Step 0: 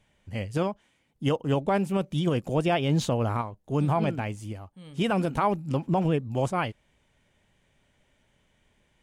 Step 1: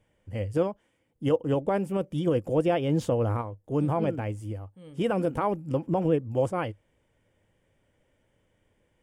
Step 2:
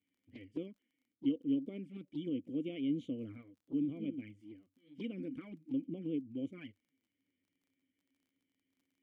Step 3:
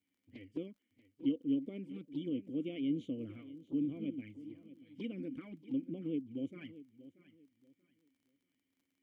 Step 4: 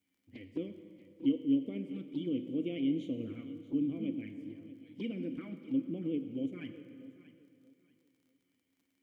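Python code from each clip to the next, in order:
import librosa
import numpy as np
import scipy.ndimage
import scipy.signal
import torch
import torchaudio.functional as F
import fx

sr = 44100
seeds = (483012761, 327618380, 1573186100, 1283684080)

y1 = fx.graphic_eq_31(x, sr, hz=(100, 315, 500, 2500, 4000, 6300), db=(8, 7, 10, -3, -11, -5))
y1 = y1 * librosa.db_to_amplitude(-4.0)
y2 = fx.vowel_filter(y1, sr, vowel='i')
y2 = fx.env_flanger(y2, sr, rest_ms=11.4, full_db=-36.0)
y2 = fx.dmg_crackle(y2, sr, seeds[0], per_s=30.0, level_db=-65.0)
y3 = fx.echo_feedback(y2, sr, ms=634, feedback_pct=26, wet_db=-16.5)
y4 = fx.rev_plate(y3, sr, seeds[1], rt60_s=2.4, hf_ratio=0.8, predelay_ms=0, drr_db=8.0)
y4 = y4 * librosa.db_to_amplitude(3.0)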